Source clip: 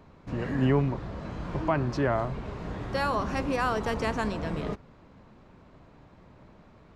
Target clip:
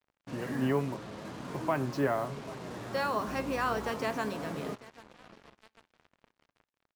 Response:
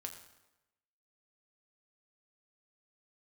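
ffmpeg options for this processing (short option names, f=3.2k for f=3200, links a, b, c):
-filter_complex "[0:a]highpass=170,aecho=1:1:790|1580|2370:0.1|0.045|0.0202,flanger=delay=7.1:depth=2.3:regen=69:speed=0.46:shape=sinusoidal,acrusher=bits=7:mix=0:aa=0.5,asplit=2[a][b];[1:a]atrim=start_sample=2205,afade=t=out:st=0.14:d=0.01,atrim=end_sample=6615[c];[b][c]afir=irnorm=-1:irlink=0,volume=-12.5dB[d];[a][d]amix=inputs=2:normalize=0,asettb=1/sr,asplit=3[e][f][g];[e]atrim=end=3.284[h];[f]atrim=start=3.28:end=3.91,asetpts=PTS-STARTPTS,afade=t=in:d=0.004:c=qsin,afade=t=out:st=0.626:d=0.004:c=qsin,aeval=exprs='val(0)+0.00501*(sin(2*PI*60*n/s)+sin(2*PI*2*60*n/s)/2+sin(2*PI*3*60*n/s)/3+sin(2*PI*4*60*n/s)/4+sin(2*PI*5*60*n/s)/5)':c=same[i];[g]atrim=start=3.906[j];[h][i]acrossfade=d=0.004:c1=hsin:c2=qsin[k];[k][j]acrossfade=d=0.004:c1=qsin:c2=hsin"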